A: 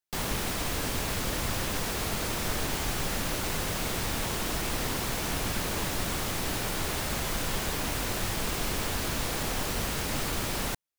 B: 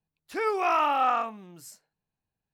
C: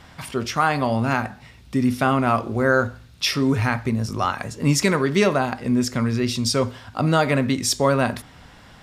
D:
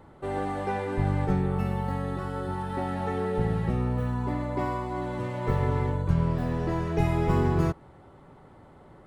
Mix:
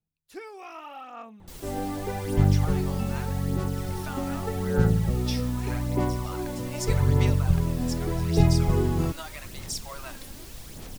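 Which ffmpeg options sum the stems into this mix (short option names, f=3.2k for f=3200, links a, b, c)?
-filter_complex "[0:a]adelay=1350,volume=-11.5dB[a];[1:a]acompressor=threshold=-29dB:ratio=3,volume=-4.5dB[b];[2:a]highpass=f=760:w=0.5412,highpass=f=760:w=1.3066,acompressor=threshold=-21dB:ratio=6,adelay=2050,volume=-8.5dB[c];[3:a]adelay=1400,volume=2dB[d];[a][b][c][d]amix=inputs=4:normalize=0,equalizer=f=1.2k:t=o:w=2.8:g=-9,aphaser=in_gain=1:out_gain=1:delay=3.8:decay=0.45:speed=0.83:type=sinusoidal"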